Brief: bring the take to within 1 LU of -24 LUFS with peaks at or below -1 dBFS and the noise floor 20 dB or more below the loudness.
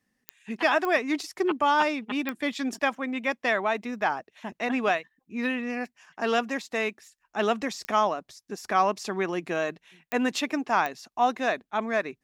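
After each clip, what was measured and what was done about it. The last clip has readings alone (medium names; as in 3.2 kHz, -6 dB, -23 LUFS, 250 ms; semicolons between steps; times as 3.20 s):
clicks found 6; loudness -27.5 LUFS; peak level -10.0 dBFS; loudness target -24.0 LUFS
-> de-click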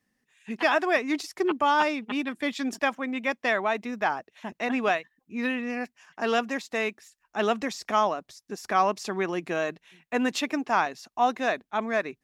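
clicks found 0; loudness -27.5 LUFS; peak level -10.0 dBFS; loudness target -24.0 LUFS
-> trim +3.5 dB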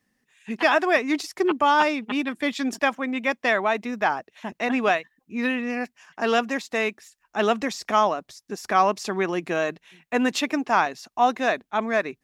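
loudness -24.0 LUFS; peak level -6.5 dBFS; noise floor -77 dBFS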